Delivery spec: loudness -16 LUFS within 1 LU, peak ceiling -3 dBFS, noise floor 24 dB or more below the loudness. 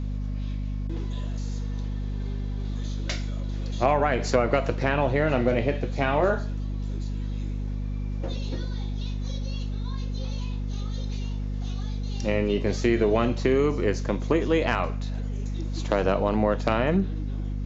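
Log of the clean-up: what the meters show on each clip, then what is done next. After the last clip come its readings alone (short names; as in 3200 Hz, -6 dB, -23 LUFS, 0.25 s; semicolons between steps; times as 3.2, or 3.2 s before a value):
hum 50 Hz; harmonics up to 250 Hz; hum level -27 dBFS; loudness -27.5 LUFS; peak -7.5 dBFS; loudness target -16.0 LUFS
-> de-hum 50 Hz, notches 5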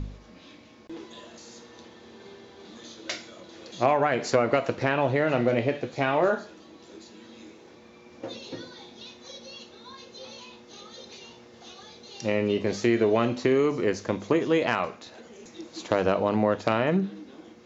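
hum none; loudness -25.5 LUFS; peak -7.5 dBFS; loudness target -16.0 LUFS
-> gain +9.5 dB; limiter -3 dBFS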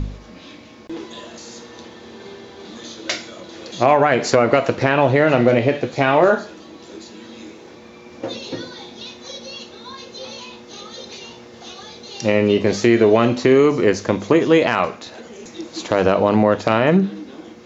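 loudness -16.5 LUFS; peak -3.0 dBFS; noise floor -42 dBFS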